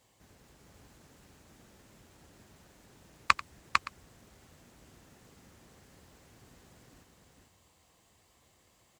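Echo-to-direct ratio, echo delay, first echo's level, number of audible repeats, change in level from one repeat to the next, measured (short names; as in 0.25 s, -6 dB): -3.0 dB, 90 ms, -18.5 dB, 3, no steady repeat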